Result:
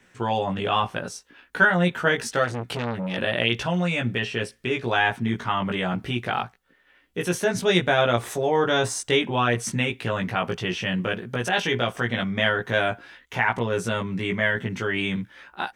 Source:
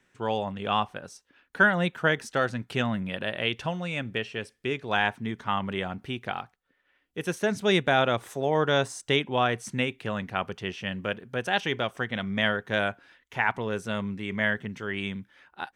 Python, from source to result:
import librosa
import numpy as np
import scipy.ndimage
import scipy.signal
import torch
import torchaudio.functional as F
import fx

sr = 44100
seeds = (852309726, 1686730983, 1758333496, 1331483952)

p1 = fx.over_compress(x, sr, threshold_db=-35.0, ratio=-1.0)
p2 = x + (p1 * librosa.db_to_amplitude(-3.0))
p3 = fx.doubler(p2, sr, ms=17.0, db=-2)
y = fx.transformer_sat(p3, sr, knee_hz=1100.0, at=(2.44, 3.18))